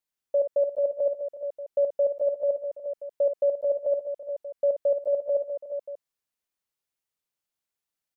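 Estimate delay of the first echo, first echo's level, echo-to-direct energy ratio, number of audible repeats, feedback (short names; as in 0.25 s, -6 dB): 55 ms, -8.0 dB, -4.5 dB, 4, no steady repeat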